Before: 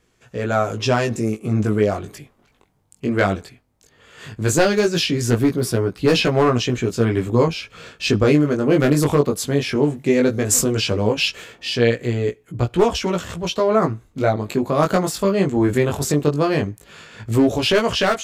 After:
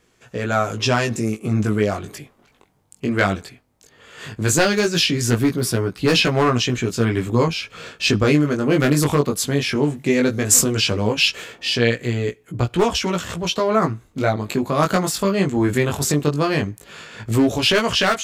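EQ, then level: bass shelf 110 Hz -6.5 dB; dynamic bell 500 Hz, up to -6 dB, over -30 dBFS, Q 0.71; +3.5 dB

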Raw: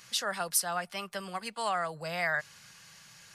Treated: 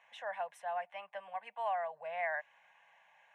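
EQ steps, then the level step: dynamic bell 840 Hz, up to -4 dB, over -48 dBFS, Q 2.1; ladder band-pass 950 Hz, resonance 35%; static phaser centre 1.3 kHz, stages 6; +10.5 dB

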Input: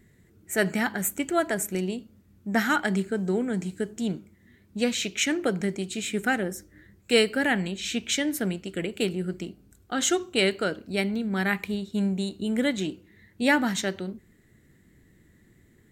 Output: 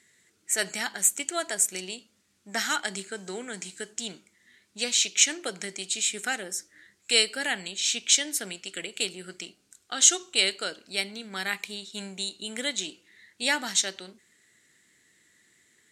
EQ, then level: frequency weighting ITU-R 468; dynamic bell 1.8 kHz, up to -6 dB, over -35 dBFS, Q 0.79; -2.0 dB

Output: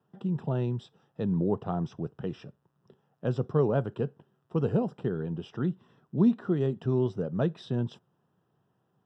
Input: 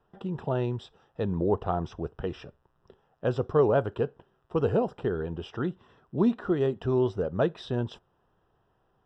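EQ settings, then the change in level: high-pass 140 Hz 24 dB/octave; tone controls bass +14 dB, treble +4 dB; -6.0 dB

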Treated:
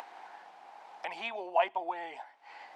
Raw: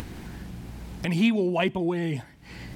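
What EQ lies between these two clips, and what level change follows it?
ladder high-pass 720 Hz, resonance 65%; tape spacing loss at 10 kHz 25 dB; treble shelf 7.3 kHz +7 dB; +8.0 dB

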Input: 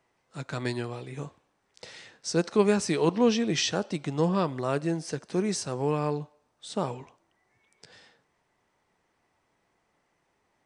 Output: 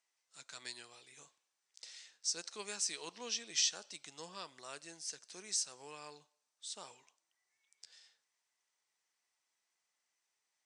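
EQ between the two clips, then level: band-pass filter 6.8 kHz, Q 1.2; 0.0 dB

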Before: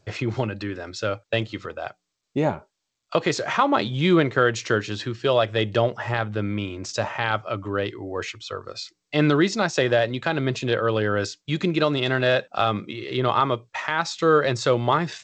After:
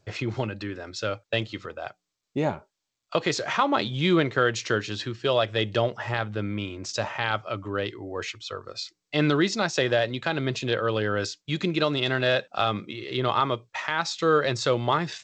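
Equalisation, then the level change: dynamic bell 4.2 kHz, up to +4 dB, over -39 dBFS, Q 0.74; -3.5 dB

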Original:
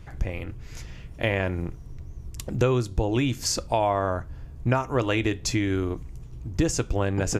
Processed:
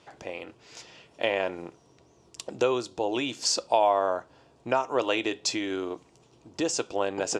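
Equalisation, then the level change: cabinet simulation 480–8000 Hz, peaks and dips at 1.5 kHz -4 dB, 2.1 kHz -8 dB, 6.5 kHz -4 dB; peaking EQ 1.2 kHz -4.5 dB 0.22 oct; band-stop 1.7 kHz, Q 17; +3.0 dB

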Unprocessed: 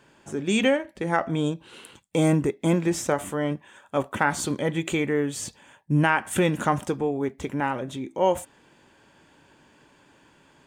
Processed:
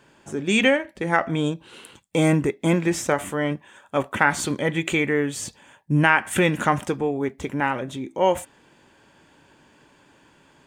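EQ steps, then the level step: dynamic bell 2.1 kHz, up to +6 dB, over -41 dBFS, Q 1.2; +1.5 dB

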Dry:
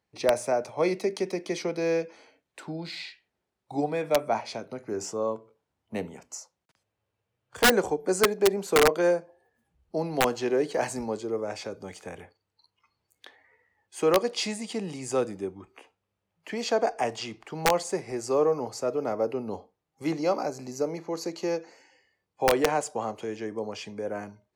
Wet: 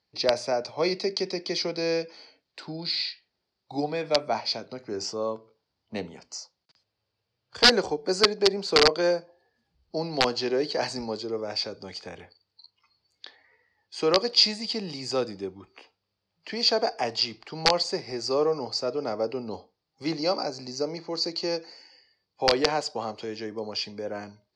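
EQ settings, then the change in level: resonant low-pass 4.7 kHz, resonance Q 7.4; -1.0 dB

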